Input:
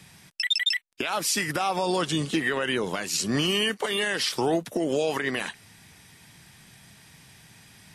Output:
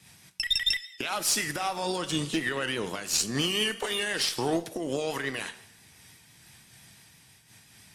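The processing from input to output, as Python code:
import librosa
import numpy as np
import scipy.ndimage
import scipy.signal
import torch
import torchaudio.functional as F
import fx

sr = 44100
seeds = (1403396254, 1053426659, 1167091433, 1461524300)

y = fx.high_shelf(x, sr, hz=3500.0, db=5.5)
y = fx.rev_double_slope(y, sr, seeds[0], early_s=0.77, late_s=2.5, knee_db=-26, drr_db=10.5)
y = fx.cheby_harmonics(y, sr, harmonics=(3, 4, 5), levels_db=(-17, -25, -32), full_scale_db=-9.5)
y = fx.vibrato(y, sr, rate_hz=5.9, depth_cents=39.0)
y = fx.am_noise(y, sr, seeds[1], hz=5.7, depth_pct=65)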